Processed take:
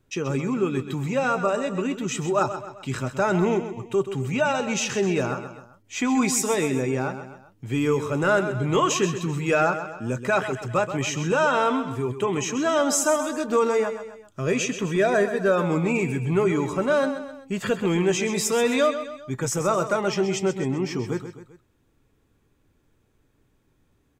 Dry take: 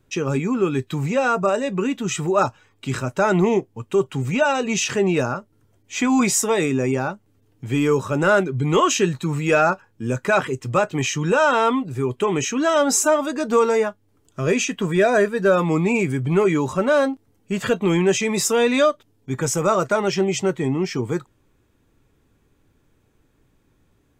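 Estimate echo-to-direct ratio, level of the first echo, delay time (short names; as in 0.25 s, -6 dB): -9.5 dB, -10.5 dB, 0.13 s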